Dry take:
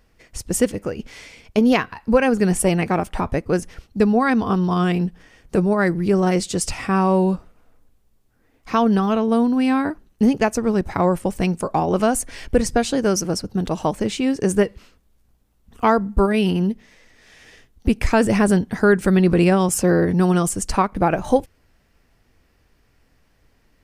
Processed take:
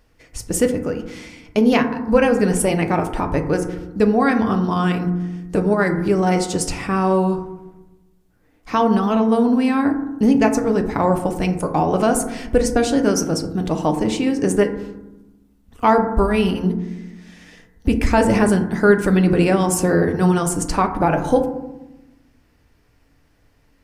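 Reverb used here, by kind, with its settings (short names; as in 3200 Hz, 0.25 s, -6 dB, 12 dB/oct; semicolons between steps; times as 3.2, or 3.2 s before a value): FDN reverb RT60 0.98 s, low-frequency decay 1.55×, high-frequency decay 0.3×, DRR 5 dB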